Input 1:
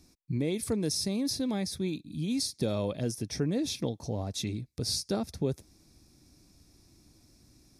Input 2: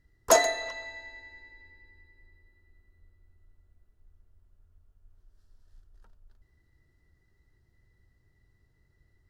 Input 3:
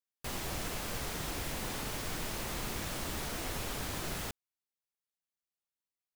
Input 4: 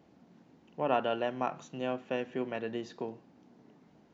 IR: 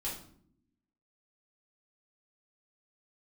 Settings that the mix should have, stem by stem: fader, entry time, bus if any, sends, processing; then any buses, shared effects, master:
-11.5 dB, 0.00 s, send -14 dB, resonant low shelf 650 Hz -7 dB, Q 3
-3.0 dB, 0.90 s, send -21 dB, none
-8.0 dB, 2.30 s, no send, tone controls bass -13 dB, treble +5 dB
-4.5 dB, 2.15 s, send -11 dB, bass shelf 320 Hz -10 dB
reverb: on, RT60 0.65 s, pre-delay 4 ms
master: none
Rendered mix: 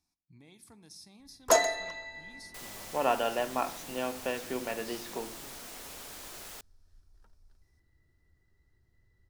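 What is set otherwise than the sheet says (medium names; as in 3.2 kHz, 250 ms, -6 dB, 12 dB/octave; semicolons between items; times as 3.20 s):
stem 1 -11.5 dB -> -19.5 dB; stem 2: entry 0.90 s -> 1.20 s; stem 4 -4.5 dB -> +2.0 dB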